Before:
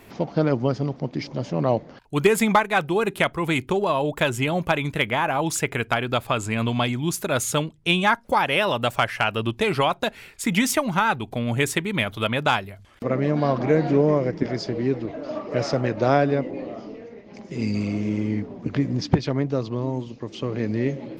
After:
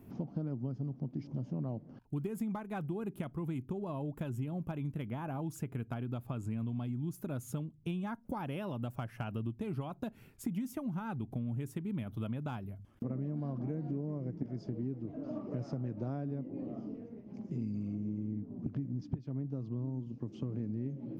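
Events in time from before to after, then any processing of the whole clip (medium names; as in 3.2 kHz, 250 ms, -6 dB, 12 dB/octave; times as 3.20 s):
17.95–18.63 s: peaking EQ 2.9 kHz -4.5 dB 2.9 oct
whole clip: graphic EQ 125/250/500/1000/2000/4000/8000 Hz +8/+7/-5/-4/-11/-12/-9 dB; compression 6:1, threshold -26 dBFS; trim -8.5 dB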